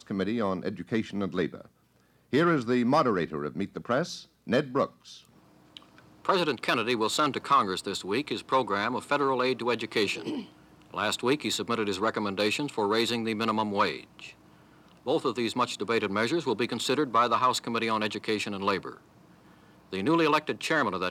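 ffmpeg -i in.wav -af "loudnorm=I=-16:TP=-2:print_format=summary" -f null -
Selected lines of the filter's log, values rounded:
Input Integrated:    -27.9 LUFS
Input True Peak:     -12.6 dBTP
Input LRA:             2.6 LU
Input Threshold:     -38.8 LUFS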